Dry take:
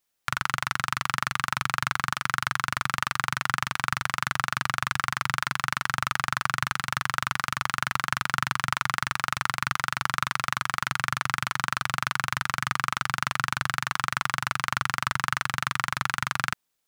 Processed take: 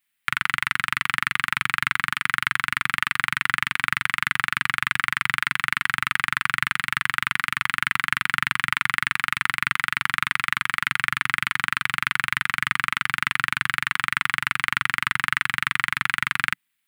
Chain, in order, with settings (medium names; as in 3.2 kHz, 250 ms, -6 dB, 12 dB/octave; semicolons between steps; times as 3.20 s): FFT filter 130 Hz 0 dB, 180 Hz +4 dB, 270 Hz +5 dB, 430 Hz -18 dB, 860 Hz 0 dB, 1.3 kHz +5 dB, 2 kHz +15 dB, 3.2 kHz +10 dB, 6 kHz -4 dB, 8.9 kHz +7 dB; trim -4.5 dB